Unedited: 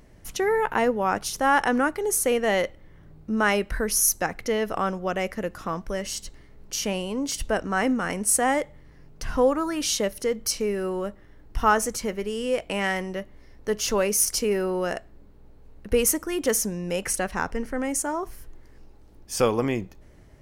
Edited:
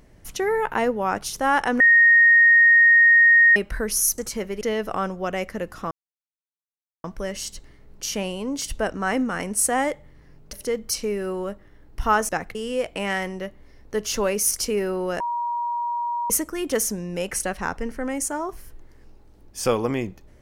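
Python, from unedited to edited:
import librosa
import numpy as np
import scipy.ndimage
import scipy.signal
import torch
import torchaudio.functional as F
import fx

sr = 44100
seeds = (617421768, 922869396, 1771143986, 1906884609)

y = fx.edit(x, sr, fx.bleep(start_s=1.8, length_s=1.76, hz=1860.0, db=-10.5),
    fx.swap(start_s=4.18, length_s=0.26, other_s=11.86, other_length_s=0.43),
    fx.insert_silence(at_s=5.74, length_s=1.13),
    fx.cut(start_s=9.23, length_s=0.87),
    fx.bleep(start_s=14.94, length_s=1.1, hz=952.0, db=-23.0), tone=tone)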